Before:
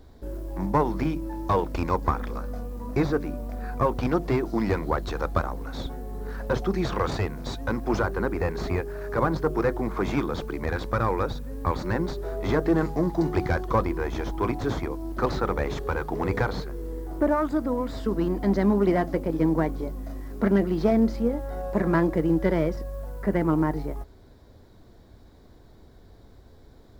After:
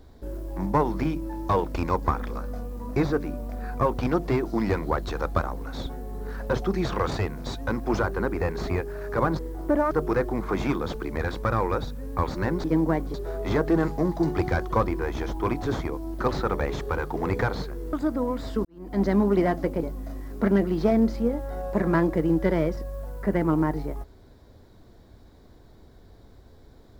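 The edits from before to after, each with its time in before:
16.91–17.43 move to 9.39
18.15–18.52 fade in quadratic
19.33–19.83 move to 12.12

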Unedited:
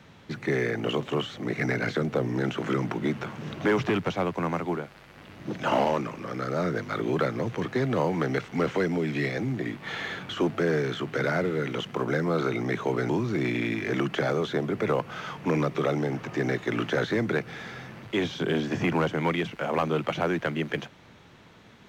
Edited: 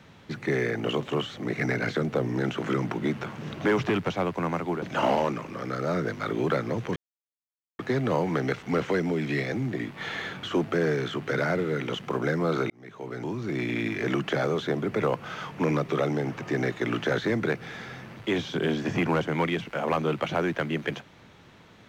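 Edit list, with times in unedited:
4.82–5.51 cut
7.65 insert silence 0.83 s
12.56–13.72 fade in

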